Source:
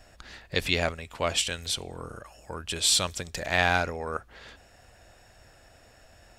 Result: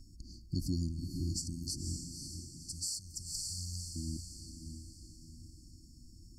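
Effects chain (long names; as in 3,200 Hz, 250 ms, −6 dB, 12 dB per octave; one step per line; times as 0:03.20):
linear-phase brick-wall band-stop 350–4,300 Hz
0:01.96–0:03.96: guitar amp tone stack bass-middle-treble 10-0-10
feedback delay with all-pass diffusion 530 ms, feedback 44%, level −7.5 dB
downward compressor 10 to 1, threshold −31 dBFS, peak gain reduction 10.5 dB
high-shelf EQ 3,200 Hz −8 dB
level +2.5 dB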